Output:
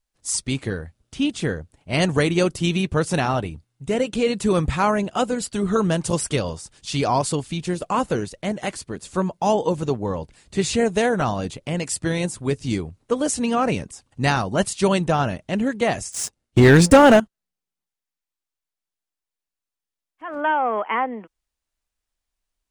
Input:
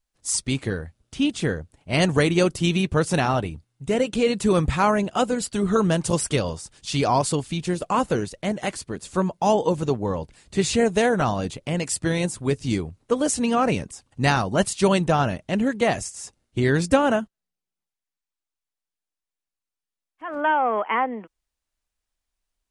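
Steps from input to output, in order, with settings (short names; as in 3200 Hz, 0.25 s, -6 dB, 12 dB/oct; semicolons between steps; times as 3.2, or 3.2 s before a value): 16.12–17.2 sample leveller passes 3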